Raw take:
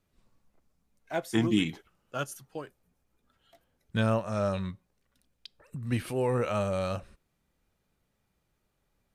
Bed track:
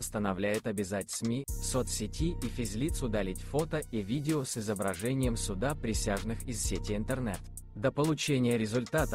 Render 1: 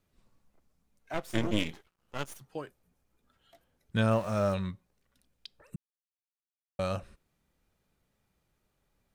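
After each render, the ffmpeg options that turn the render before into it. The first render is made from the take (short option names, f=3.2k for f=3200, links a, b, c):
-filter_complex "[0:a]asettb=1/sr,asplit=3[a][b][c];[a]atrim=end=1.144[d];[b]atrim=start=1.14:end=2.41,asetpts=PTS-STARTPTS,afade=t=in:d=0.004:c=qsin,afade=t=out:st=1.266:d=0.004:c=qsin,aeval=exprs='max(val(0),0)':c=same[e];[c]atrim=start=2.406[f];[d][e]acrossfade=d=0.004:c1=hsin:c2=qsin[g];[g][f]acrossfade=d=0.004:c1=qsin:c2=hsin,asettb=1/sr,asplit=3[h][i][j];[h]atrim=end=4.114[k];[i]atrim=start=4.11:end=4.54,asetpts=PTS-STARTPTS,afade=t=in:d=0.004:c=qsin,afade=t=out:st=0.426:d=0.004:c=qsin,aeval=exprs='val(0)+0.5*0.0075*sgn(val(0))':c=same[l];[j]atrim=start=4.536[m];[k][l]acrossfade=d=0.004:c1=hsin:c2=qsin[n];[n][m]acrossfade=d=0.004:c1=qsin:c2=hsin,asplit=3[o][p][q];[o]atrim=end=5.76,asetpts=PTS-STARTPTS,afade=t=out:st=5.756:d=0.004:c=hsin[r];[p]atrim=start=5.76:end=6.79,asetpts=PTS-STARTPTS,volume=0[s];[q]atrim=start=6.79,asetpts=PTS-STARTPTS,afade=t=in:d=0.004:c=hsin[t];[r][s][t]concat=n=3:v=0:a=1"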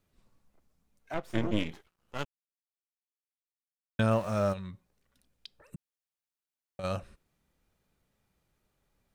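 -filter_complex "[0:a]asettb=1/sr,asplit=3[a][b][c];[a]atrim=end=1.144[d];[b]atrim=start=1.14:end=1.72,asetpts=PTS-STARTPTS,afade=t=in:d=0.004:c=qsin,afade=t=out:st=0.576:d=0.004:c=qsin,highshelf=f=3.8k:g=-11[e];[c]atrim=start=1.716[f];[d][e]acrossfade=d=0.004:c1=hsin:c2=qsin[g];[g][f]acrossfade=d=0.004:c1=qsin:c2=hsin,asplit=3[h][i][j];[h]afade=t=out:st=4.52:d=0.02[k];[i]acompressor=threshold=-38dB:ratio=4:attack=3.2:release=140:knee=1:detection=peak,afade=t=in:st=4.52:d=0.02,afade=t=out:st=6.83:d=0.02[l];[j]afade=t=in:st=6.83:d=0.02[m];[k][l][m]amix=inputs=3:normalize=0,asplit=3[n][o][p];[n]atrim=end=2.25,asetpts=PTS-STARTPTS,afade=t=out:st=2.246:d=0.004:c=hsin[q];[o]atrim=start=2.25:end=3.99,asetpts=PTS-STARTPTS,volume=0[r];[p]atrim=start=3.99,asetpts=PTS-STARTPTS,afade=t=in:d=0.004:c=hsin[s];[q][r][s]concat=n=3:v=0:a=1"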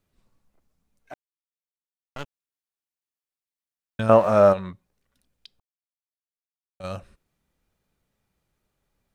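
-filter_complex "[0:a]asettb=1/sr,asplit=3[a][b][c];[a]atrim=end=4.094[d];[b]atrim=start=4.09:end=4.73,asetpts=PTS-STARTPTS,afade=t=in:d=0.004:c=qsin,afade=t=out:st=0.636:d=0.004:c=qsin,equalizer=f=710:w=0.31:g=15[e];[c]atrim=start=4.726[f];[d][e]acrossfade=d=0.004:c1=hsin:c2=qsin[g];[g][f]acrossfade=d=0.004:c1=qsin:c2=hsin,asplit=5[h][i][j][k][l];[h]atrim=end=1.14,asetpts=PTS-STARTPTS,afade=t=out:st=1.136:d=0.004:c=hsin[m];[i]atrim=start=1.14:end=2.16,asetpts=PTS-STARTPTS,volume=0[n];[j]atrim=start=2.16:end=5.6,asetpts=PTS-STARTPTS,afade=t=in:d=0.004:c=hsin,afade=t=out:st=3.436:d=0.004:c=hsin[o];[k]atrim=start=5.6:end=6.8,asetpts=PTS-STARTPTS,volume=0[p];[l]atrim=start=6.8,asetpts=PTS-STARTPTS,afade=t=in:d=0.004:c=hsin[q];[m][n][o][p][q]concat=n=5:v=0:a=1"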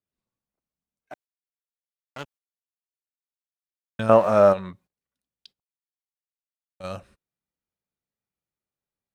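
-af "highpass=f=110:p=1,agate=range=-17dB:threshold=-53dB:ratio=16:detection=peak"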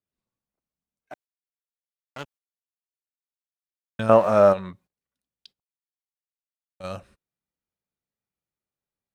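-af anull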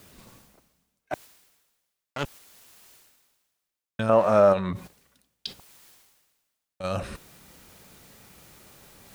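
-af "alimiter=limit=-7.5dB:level=0:latency=1:release=21,areverse,acompressor=mode=upward:threshold=-21dB:ratio=2.5,areverse"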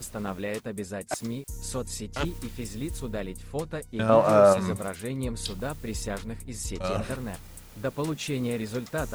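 -filter_complex "[1:a]volume=-1dB[a];[0:a][a]amix=inputs=2:normalize=0"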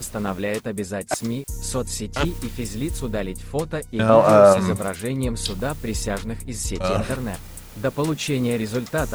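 -af "volume=7dB,alimiter=limit=-2dB:level=0:latency=1"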